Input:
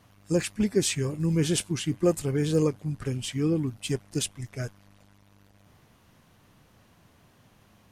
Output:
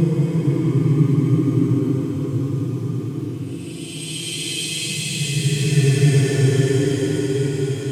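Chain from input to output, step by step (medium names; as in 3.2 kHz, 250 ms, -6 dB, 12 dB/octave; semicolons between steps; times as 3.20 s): high-pass 73 Hz; two-slope reverb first 0.43 s, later 1.8 s, from -18 dB, DRR -9.5 dB; Paulstretch 19×, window 0.10 s, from 3.62 s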